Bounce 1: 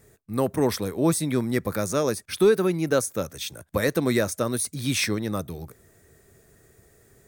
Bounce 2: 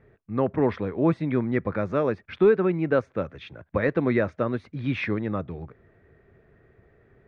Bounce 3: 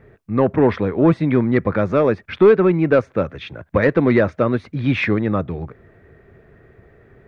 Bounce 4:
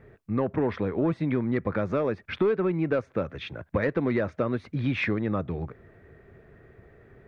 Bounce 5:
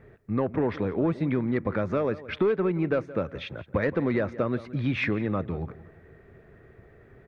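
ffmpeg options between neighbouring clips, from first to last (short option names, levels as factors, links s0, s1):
-af "lowpass=f=2500:w=0.5412,lowpass=f=2500:w=1.3066"
-af "asoftclip=type=tanh:threshold=0.224,volume=2.82"
-af "acompressor=threshold=0.1:ratio=3,volume=0.631"
-filter_complex "[0:a]asplit=2[s0][s1];[s1]adelay=172,lowpass=f=2600:p=1,volume=0.15,asplit=2[s2][s3];[s3]adelay=172,lowpass=f=2600:p=1,volume=0.35,asplit=2[s4][s5];[s5]adelay=172,lowpass=f=2600:p=1,volume=0.35[s6];[s0][s2][s4][s6]amix=inputs=4:normalize=0"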